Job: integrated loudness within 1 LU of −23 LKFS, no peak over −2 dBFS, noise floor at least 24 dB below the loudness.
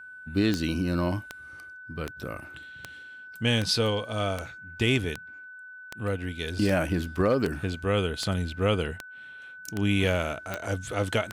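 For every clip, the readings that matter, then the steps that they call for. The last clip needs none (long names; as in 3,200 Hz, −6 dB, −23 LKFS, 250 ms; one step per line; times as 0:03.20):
number of clicks 15; interfering tone 1,500 Hz; level of the tone −42 dBFS; integrated loudness −28.0 LKFS; sample peak −11.5 dBFS; target loudness −23.0 LKFS
→ click removal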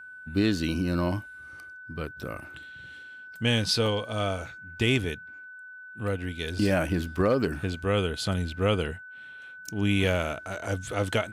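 number of clicks 0; interfering tone 1,500 Hz; level of the tone −42 dBFS
→ notch filter 1,500 Hz, Q 30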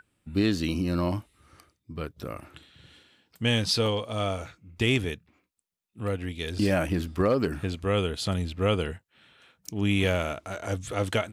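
interfering tone none found; integrated loudness −28.0 LKFS; sample peak −11.5 dBFS; target loudness −23.0 LKFS
→ level +5 dB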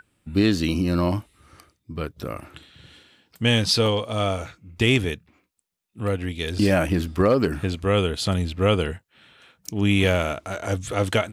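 integrated loudness −23.0 LKFS; sample peak −6.5 dBFS; background noise floor −76 dBFS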